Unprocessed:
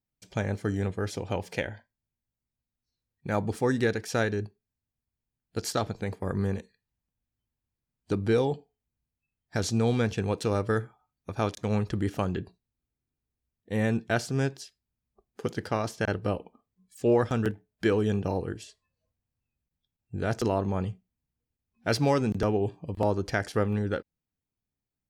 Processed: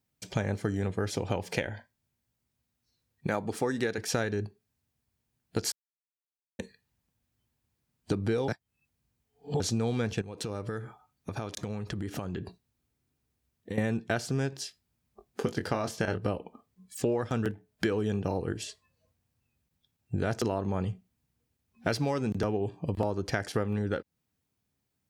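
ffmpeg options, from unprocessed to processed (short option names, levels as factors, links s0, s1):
-filter_complex "[0:a]asettb=1/sr,asplit=3[s0][s1][s2];[s0]atrim=end=3.274[s3];[s1]atrim=start=3.27:end=3.98,asetpts=PTS-STARTPTS,afade=t=in:d=0.004:c=qsin,afade=t=out:st=0.706:d=0.004:c=qsin,highpass=f=230:p=1[s4];[s2]atrim=start=3.976[s5];[s3][s4]acrossfade=d=0.004:c1=hsin:c2=qsin[s6];[s6][s5]acrossfade=d=0.004:c1=qsin:c2=hsin,asettb=1/sr,asplit=3[s7][s8][s9];[s7]atrim=end=10.214[s10];[s8]atrim=start=10.21:end=13.78,asetpts=PTS-STARTPTS,afade=t=in:d=0.004:c=qsin,afade=t=out:st=3.566:d=0.004:c=qsin,acompressor=threshold=0.0112:ratio=20:attack=3.2:release=140:knee=1:detection=peak[s11];[s9]atrim=start=13.776[s12];[s10][s11]acrossfade=d=0.004:c1=hsin:c2=qsin[s13];[s13][s12]acrossfade=d=0.004:c1=qsin:c2=hsin,asettb=1/sr,asplit=3[s14][s15][s16];[s14]atrim=end=14.504[s17];[s15]atrim=start=14.5:end=16.18,asetpts=PTS-STARTPTS,afade=t=in:d=0.004:c=qsin,afade=t=out:st=1.676:d=0.004:c=qsin,asplit=2[s18][s19];[s19]adelay=22,volume=0.398[s20];[s18][s20]amix=inputs=2:normalize=0,atrim=end_sample=74088[s21];[s16]atrim=start=16.176[s22];[s17][s21]acrossfade=d=0.004:c1=hsin:c2=qsin[s23];[s23][s22]acrossfade=d=0.004:c1=qsin:c2=hsin,asplit=5[s24][s25][s26][s27][s28];[s24]atrim=end=5.72,asetpts=PTS-STARTPTS,afade=t=out:st=5.716:d=0.004:c=hsin[s29];[s25]atrim=start=5.72:end=6.59,asetpts=PTS-STARTPTS,volume=0[s30];[s26]atrim=start=6.59:end=8.482,asetpts=PTS-STARTPTS,afade=t=in:d=0.004:c=hsin[s31];[s27]atrim=start=8.478:end=9.602,asetpts=PTS-STARTPTS,areverse[s32];[s28]atrim=start=9.598[s33];[s29][s30][s31]concat=n=3:v=0:a=1[s34];[s34][s32]acrossfade=d=0.004:c1=hsin:c2=hsin[s35];[s35][s33]acrossfade=d=0.004:c1=hsin:c2=hsin,highpass=65,acompressor=threshold=0.0158:ratio=6,volume=2.82"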